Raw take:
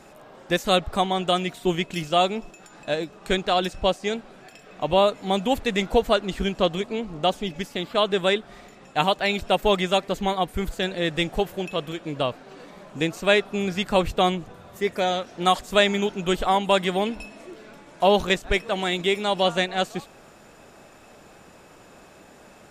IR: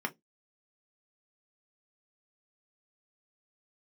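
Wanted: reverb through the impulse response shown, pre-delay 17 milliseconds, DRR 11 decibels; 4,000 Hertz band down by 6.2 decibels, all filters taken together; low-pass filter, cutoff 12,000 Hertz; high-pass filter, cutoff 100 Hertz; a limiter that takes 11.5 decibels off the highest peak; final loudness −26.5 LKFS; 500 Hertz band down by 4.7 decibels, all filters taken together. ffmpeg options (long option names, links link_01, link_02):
-filter_complex "[0:a]highpass=100,lowpass=12000,equalizer=frequency=500:width_type=o:gain=-6,equalizer=frequency=4000:width_type=o:gain=-8,alimiter=limit=-19.5dB:level=0:latency=1,asplit=2[link_01][link_02];[1:a]atrim=start_sample=2205,adelay=17[link_03];[link_02][link_03]afir=irnorm=-1:irlink=0,volume=-16dB[link_04];[link_01][link_04]amix=inputs=2:normalize=0,volume=4.5dB"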